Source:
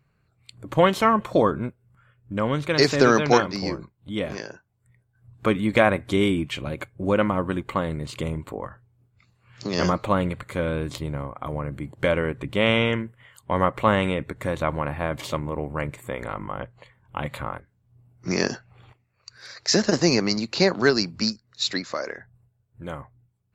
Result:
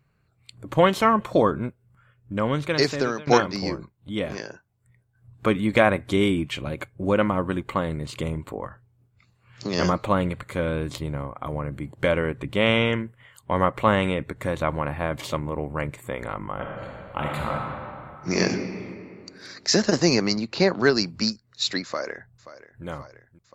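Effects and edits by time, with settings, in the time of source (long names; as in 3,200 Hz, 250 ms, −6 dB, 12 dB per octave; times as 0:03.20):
0:02.63–0:03.27: fade out, to −21 dB
0:16.54–0:18.38: thrown reverb, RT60 2.5 s, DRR −2 dB
0:20.34–0:20.95: low-pass filter 2,500 Hz → 5,100 Hz 6 dB per octave
0:21.85–0:22.85: delay throw 530 ms, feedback 75%, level −15.5 dB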